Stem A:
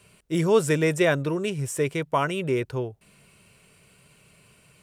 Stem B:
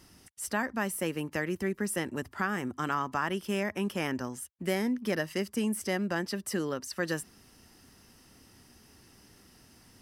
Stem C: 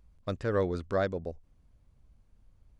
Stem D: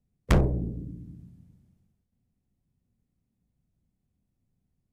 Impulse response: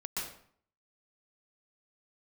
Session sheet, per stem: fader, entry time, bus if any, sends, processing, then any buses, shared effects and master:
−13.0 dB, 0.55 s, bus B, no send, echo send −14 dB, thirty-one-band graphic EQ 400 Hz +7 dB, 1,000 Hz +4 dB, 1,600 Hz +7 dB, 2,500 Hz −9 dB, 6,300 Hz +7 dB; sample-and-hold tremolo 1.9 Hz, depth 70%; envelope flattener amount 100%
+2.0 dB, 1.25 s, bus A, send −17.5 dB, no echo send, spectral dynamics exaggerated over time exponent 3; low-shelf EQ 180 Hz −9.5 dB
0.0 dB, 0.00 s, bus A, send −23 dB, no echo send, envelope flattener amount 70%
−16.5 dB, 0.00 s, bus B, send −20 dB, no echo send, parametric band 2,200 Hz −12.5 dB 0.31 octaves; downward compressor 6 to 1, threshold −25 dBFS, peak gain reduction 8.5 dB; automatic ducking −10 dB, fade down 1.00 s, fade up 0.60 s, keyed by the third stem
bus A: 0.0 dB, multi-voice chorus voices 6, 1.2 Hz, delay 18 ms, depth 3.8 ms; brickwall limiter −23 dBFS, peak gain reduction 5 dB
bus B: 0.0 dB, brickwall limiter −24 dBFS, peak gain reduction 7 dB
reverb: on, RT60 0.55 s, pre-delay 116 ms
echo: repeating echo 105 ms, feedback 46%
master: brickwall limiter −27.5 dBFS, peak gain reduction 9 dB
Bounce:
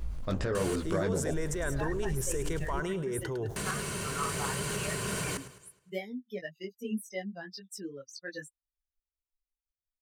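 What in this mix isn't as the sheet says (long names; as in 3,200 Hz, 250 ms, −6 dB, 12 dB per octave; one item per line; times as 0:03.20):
stem B: send off
stem D: missing downward compressor 6 to 1, threshold −25 dBFS, peak gain reduction 8.5 dB
master: missing brickwall limiter −27.5 dBFS, peak gain reduction 9 dB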